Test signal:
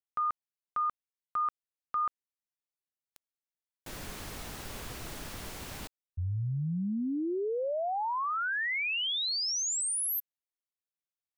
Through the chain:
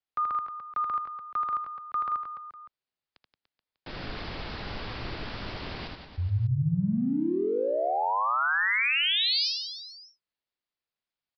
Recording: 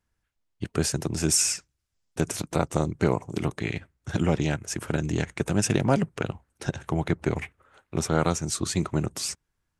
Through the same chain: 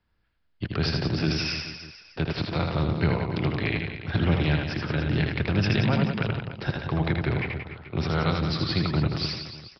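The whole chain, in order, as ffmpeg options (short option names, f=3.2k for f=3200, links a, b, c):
-filter_complex "[0:a]acrossover=split=140|1600[a][b][c];[b]acompressor=threshold=-31dB:ratio=3:attack=0.22:release=35:knee=2.83:detection=peak[d];[a][d][c]amix=inputs=3:normalize=0,asplit=2[e][f];[f]aecho=0:1:80|176|291.2|429.4|595.3:0.631|0.398|0.251|0.158|0.1[g];[e][g]amix=inputs=2:normalize=0,aresample=11025,aresample=44100,volume=4dB"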